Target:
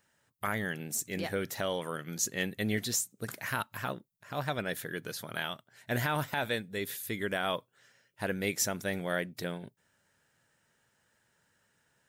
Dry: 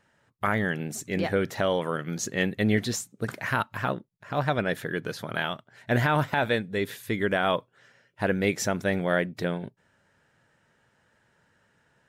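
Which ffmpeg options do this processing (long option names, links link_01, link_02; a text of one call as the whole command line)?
ffmpeg -i in.wav -af "aemphasis=mode=production:type=75kf,volume=-8.5dB" out.wav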